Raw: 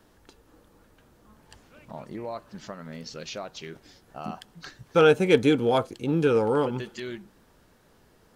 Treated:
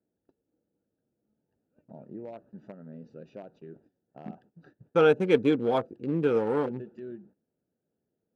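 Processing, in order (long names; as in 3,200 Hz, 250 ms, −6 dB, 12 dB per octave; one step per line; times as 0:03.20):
adaptive Wiener filter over 41 samples
high-pass filter 150 Hz 12 dB per octave
noise gate −54 dBFS, range −16 dB
high-shelf EQ 3,800 Hz −11.5 dB
level −2 dB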